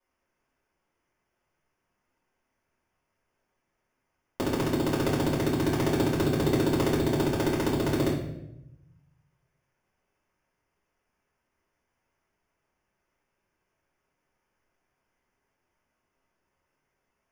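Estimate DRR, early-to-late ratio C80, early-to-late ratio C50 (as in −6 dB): −7.5 dB, 7.0 dB, 4.0 dB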